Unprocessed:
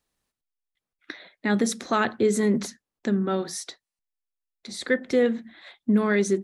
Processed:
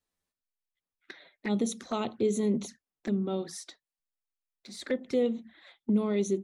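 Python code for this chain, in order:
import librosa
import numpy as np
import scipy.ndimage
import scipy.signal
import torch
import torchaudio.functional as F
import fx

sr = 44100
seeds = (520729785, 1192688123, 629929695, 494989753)

y = fx.env_flanger(x, sr, rest_ms=11.3, full_db=-22.5)
y = F.gain(torch.from_numpy(y), -5.0).numpy()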